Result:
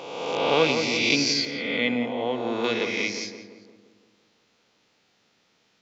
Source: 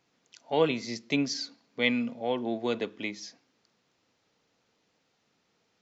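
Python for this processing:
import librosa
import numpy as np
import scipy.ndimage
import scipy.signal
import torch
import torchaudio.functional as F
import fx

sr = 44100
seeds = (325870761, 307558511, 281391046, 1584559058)

y = fx.spec_swells(x, sr, rise_s=1.59)
y = fx.peak_eq(y, sr, hz=3300.0, db=fx.steps((0.0, 6.0), (1.45, -2.0), (2.64, 6.0)), octaves=2.3)
y = fx.echo_filtered(y, sr, ms=172, feedback_pct=56, hz=1600.0, wet_db=-6.0)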